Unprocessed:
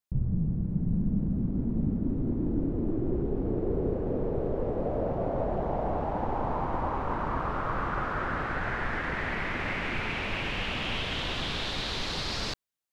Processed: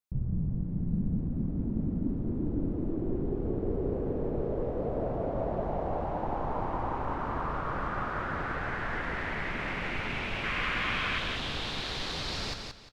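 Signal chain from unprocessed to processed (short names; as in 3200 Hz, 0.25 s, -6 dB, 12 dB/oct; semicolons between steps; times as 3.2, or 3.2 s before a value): painted sound noise, 10.43–11.19, 1000–2600 Hz -31 dBFS; feedback echo 0.176 s, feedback 27%, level -5 dB; gain -3.5 dB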